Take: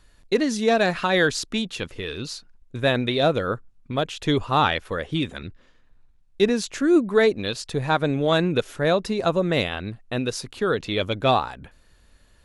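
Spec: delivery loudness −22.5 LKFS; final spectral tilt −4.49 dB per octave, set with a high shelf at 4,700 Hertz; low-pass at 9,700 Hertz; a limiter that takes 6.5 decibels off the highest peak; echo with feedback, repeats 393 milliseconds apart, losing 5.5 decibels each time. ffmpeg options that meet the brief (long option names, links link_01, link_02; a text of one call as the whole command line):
ffmpeg -i in.wav -af "lowpass=9700,highshelf=frequency=4700:gain=-7.5,alimiter=limit=-13dB:level=0:latency=1,aecho=1:1:393|786|1179|1572|1965|2358|2751:0.531|0.281|0.149|0.079|0.0419|0.0222|0.0118,volume=1.5dB" out.wav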